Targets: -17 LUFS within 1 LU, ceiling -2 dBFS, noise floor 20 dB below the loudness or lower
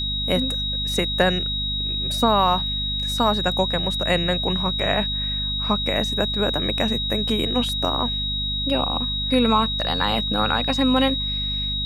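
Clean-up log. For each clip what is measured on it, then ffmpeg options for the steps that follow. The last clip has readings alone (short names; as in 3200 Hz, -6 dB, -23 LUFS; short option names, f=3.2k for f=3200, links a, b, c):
hum 50 Hz; harmonics up to 250 Hz; hum level -27 dBFS; steady tone 3800 Hz; tone level -24 dBFS; loudness -21.0 LUFS; peak -4.5 dBFS; loudness target -17.0 LUFS
-> -af "bandreject=f=50:t=h:w=4,bandreject=f=100:t=h:w=4,bandreject=f=150:t=h:w=4,bandreject=f=200:t=h:w=4,bandreject=f=250:t=h:w=4"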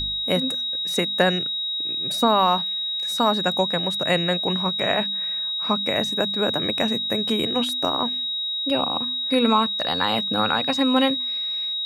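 hum none; steady tone 3800 Hz; tone level -24 dBFS
-> -af "bandreject=f=3.8k:w=30"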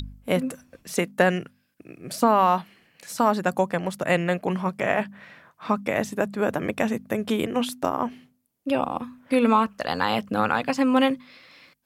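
steady tone none; loudness -24.5 LUFS; peak -5.5 dBFS; loudness target -17.0 LUFS
-> -af "volume=7.5dB,alimiter=limit=-2dB:level=0:latency=1"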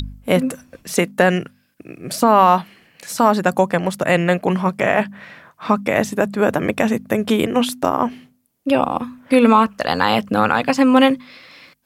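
loudness -17.5 LUFS; peak -2.0 dBFS; noise floor -62 dBFS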